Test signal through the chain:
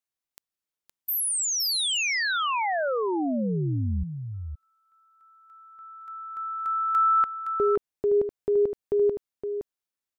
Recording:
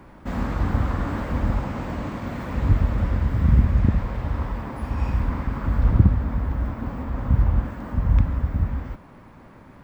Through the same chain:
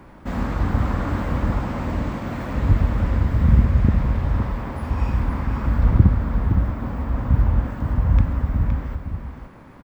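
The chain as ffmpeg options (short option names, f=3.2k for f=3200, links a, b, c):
-af "aecho=1:1:516:0.422,volume=1.5dB"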